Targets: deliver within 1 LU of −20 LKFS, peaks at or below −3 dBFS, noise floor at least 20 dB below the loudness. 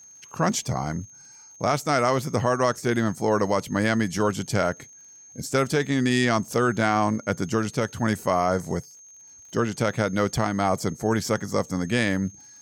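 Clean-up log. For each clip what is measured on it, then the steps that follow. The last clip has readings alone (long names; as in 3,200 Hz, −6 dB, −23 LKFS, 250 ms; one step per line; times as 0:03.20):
crackle rate 51 per second; interfering tone 6,400 Hz; level of the tone −46 dBFS; integrated loudness −24.5 LKFS; sample peak −9.5 dBFS; target loudness −20.0 LKFS
→ click removal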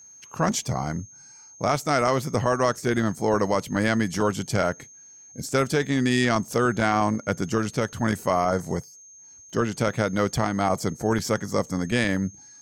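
crackle rate 0.63 per second; interfering tone 6,400 Hz; level of the tone −46 dBFS
→ notch filter 6,400 Hz, Q 30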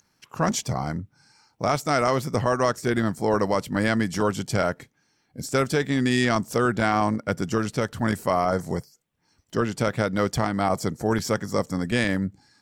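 interfering tone none found; integrated loudness −24.5 LKFS; sample peak −9.5 dBFS; target loudness −20.0 LKFS
→ level +4.5 dB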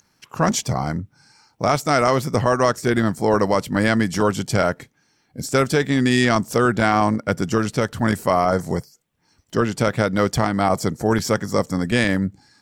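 integrated loudness −20.0 LKFS; sample peak −5.0 dBFS; background noise floor −64 dBFS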